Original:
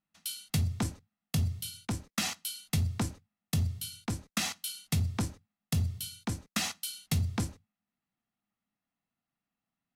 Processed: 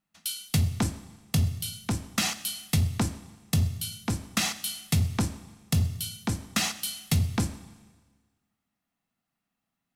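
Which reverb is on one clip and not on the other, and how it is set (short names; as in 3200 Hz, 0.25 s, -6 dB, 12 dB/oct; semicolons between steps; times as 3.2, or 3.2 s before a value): Schroeder reverb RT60 1.4 s, combs from 29 ms, DRR 13.5 dB; gain +5 dB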